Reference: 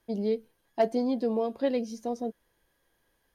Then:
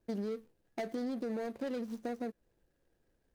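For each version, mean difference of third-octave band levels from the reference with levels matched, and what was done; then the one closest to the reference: 6.5 dB: median filter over 41 samples; high shelf 3200 Hz +8 dB; limiter -25 dBFS, peak gain reduction 9.5 dB; compressor 3:1, threshold -37 dBFS, peak gain reduction 7 dB; gain +1 dB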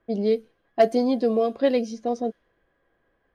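1.5 dB: low-pass opened by the level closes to 2100 Hz, open at -22.5 dBFS; Butterworth band-stop 900 Hz, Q 6.4; low shelf 240 Hz -6 dB; mismatched tape noise reduction decoder only; gain +8 dB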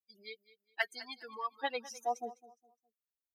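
10.0 dB: per-bin expansion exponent 3; high-pass sweep 1800 Hz -> 140 Hz, 1.07–3.19; bell 560 Hz -14 dB 0.37 oct; feedback echo 0.206 s, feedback 30%, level -18 dB; gain +6.5 dB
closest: second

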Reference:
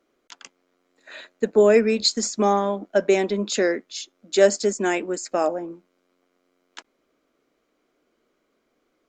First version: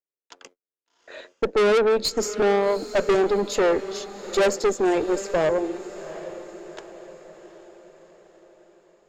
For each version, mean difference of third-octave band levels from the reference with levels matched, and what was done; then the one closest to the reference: 7.5 dB: gate -50 dBFS, range -42 dB; bell 460 Hz +14.5 dB 1.3 oct; tube stage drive 14 dB, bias 0.45; on a send: diffused feedback echo 0.757 s, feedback 50%, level -14 dB; on the sum: gain -2.5 dB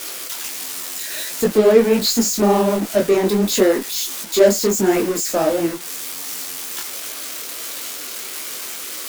11.0 dB: switching spikes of -19.5 dBFS; tilt shelf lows +5.5 dB, about 710 Hz; in parallel at -8.5 dB: fuzz box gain 33 dB, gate -40 dBFS; on the sum: detuned doubles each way 49 cents; gain +3 dB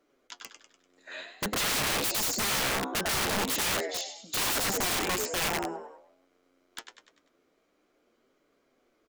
19.0 dB: flange 0.47 Hz, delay 6.6 ms, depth 5.1 ms, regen +55%; on a send: frequency-shifting echo 98 ms, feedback 47%, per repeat +63 Hz, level -8 dB; on the sum: dynamic EQ 600 Hz, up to -4 dB, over -38 dBFS, Q 3.1; wrapped overs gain 26.5 dB; gain +3 dB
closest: first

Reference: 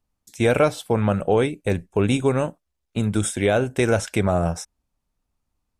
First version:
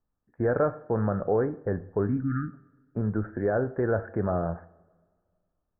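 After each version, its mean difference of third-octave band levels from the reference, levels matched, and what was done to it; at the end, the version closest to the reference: 9.5 dB: spectral delete 2.07–2.54, 340–1200 Hz; in parallel at 0 dB: limiter -16.5 dBFS, peak gain reduction 10 dB; on the sum: rippled Chebyshev low-pass 1800 Hz, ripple 3 dB; two-slope reverb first 0.55 s, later 1.9 s, from -18 dB, DRR 12 dB; gain -8.5 dB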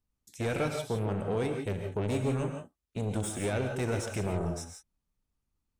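6.5 dB: passive tone stack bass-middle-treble 6-0-2; soft clip -39.5 dBFS, distortion -10 dB; bell 600 Hz +13 dB 2.6 oct; non-linear reverb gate 0.19 s rising, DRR 4 dB; gain +6.5 dB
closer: second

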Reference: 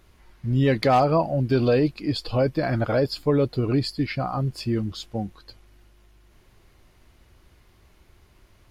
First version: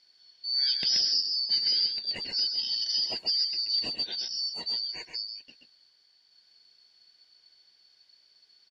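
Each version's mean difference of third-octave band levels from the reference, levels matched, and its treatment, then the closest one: 16.5 dB: four-band scrambler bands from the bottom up 4321; LPF 6100 Hz 12 dB/oct; low shelf 240 Hz -7.5 dB; echo 0.13 s -6 dB; gain -6.5 dB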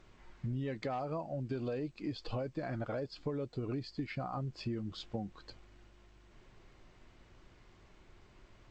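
4.0 dB: bell 66 Hz -10 dB 0.83 oct; compressor 10:1, threshold -33 dBFS, peak gain reduction 18 dB; air absorption 170 m; gain -1.5 dB; G.722 64 kbps 16000 Hz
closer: second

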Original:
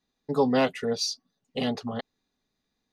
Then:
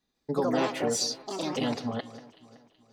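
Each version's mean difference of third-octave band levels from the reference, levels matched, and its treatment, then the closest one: 8.0 dB: de-hum 180.1 Hz, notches 23; compressor 5:1, threshold -25 dBFS, peak gain reduction 7.5 dB; echoes that change speed 0.146 s, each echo +4 st, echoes 2; on a send: echo with dull and thin repeats by turns 0.188 s, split 2300 Hz, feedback 63%, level -14 dB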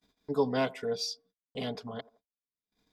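2.0 dB: upward compressor, threshold -37 dBFS; band-limited delay 84 ms, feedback 36%, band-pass 560 Hz, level -20 dB; gate -54 dBFS, range -35 dB; ripple EQ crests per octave 1.7, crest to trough 8 dB; gain -6.5 dB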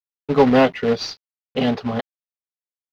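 4.5 dB: HPF 46 Hz 12 dB/oct; high shelf 5200 Hz +5 dB; companded quantiser 4-bit; air absorption 280 m; gain +9 dB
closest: second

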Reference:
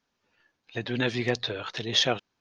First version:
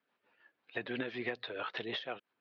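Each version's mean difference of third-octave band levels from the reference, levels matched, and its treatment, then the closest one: 5.0 dB: weighting filter A; compressor 12:1, threshold -34 dBFS, peak gain reduction 17.5 dB; rotary speaker horn 6 Hz; air absorption 400 m; gain +5.5 dB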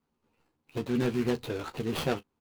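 7.5 dB: median filter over 25 samples; bell 630 Hz -7.5 dB 0.46 oct; in parallel at -3 dB: limiter -25 dBFS, peak gain reduction 8 dB; on the sum: early reflections 13 ms -6.5 dB, 37 ms -18 dB; gain -1.5 dB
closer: first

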